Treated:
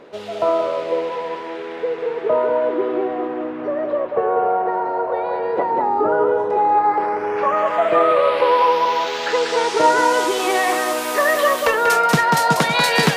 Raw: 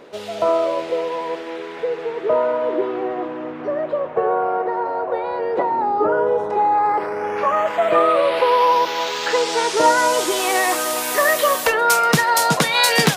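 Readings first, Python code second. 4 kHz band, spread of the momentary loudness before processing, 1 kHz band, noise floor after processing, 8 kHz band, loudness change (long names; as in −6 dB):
−2.0 dB, 10 LU, +1.0 dB, −29 dBFS, −5.5 dB, +0.5 dB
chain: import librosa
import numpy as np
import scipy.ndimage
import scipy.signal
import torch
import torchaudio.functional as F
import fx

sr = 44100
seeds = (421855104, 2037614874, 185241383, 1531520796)

y = fx.high_shelf(x, sr, hz=5200.0, db=-9.0)
y = y + 10.0 ** (-5.5 / 20.0) * np.pad(y, (int(190 * sr / 1000.0), 0))[:len(y)]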